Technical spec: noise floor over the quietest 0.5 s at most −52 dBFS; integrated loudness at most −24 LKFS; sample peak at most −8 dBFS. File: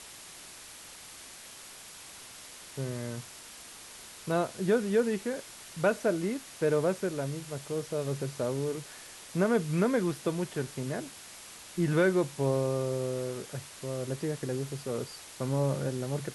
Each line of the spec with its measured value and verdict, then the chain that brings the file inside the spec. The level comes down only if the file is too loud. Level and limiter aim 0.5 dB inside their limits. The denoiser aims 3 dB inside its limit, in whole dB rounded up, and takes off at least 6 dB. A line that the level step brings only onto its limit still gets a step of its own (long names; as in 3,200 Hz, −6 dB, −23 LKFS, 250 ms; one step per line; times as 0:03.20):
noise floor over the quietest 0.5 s −48 dBFS: out of spec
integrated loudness −31.5 LKFS: in spec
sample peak −14.5 dBFS: in spec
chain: broadband denoise 7 dB, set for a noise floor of −48 dBFS